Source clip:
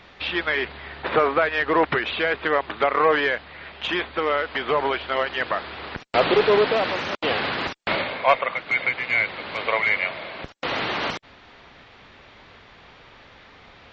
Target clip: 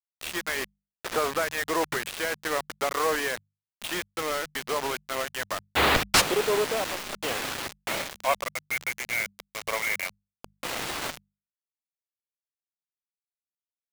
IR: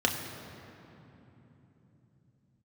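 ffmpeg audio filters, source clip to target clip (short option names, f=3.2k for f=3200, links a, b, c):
-filter_complex "[0:a]asplit=3[a][b][c];[a]afade=t=out:st=5.75:d=0.02[d];[b]aeval=exprs='0.473*sin(PI/2*8.91*val(0)/0.473)':c=same,afade=t=in:st=5.75:d=0.02,afade=t=out:st=6.2:d=0.02[e];[c]afade=t=in:st=6.2:d=0.02[f];[d][e][f]amix=inputs=3:normalize=0,acrusher=bits=3:mix=0:aa=0.000001,bandreject=f=50:t=h:w=6,bandreject=f=100:t=h:w=6,bandreject=f=150:t=h:w=6,bandreject=f=200:t=h:w=6,volume=-7.5dB"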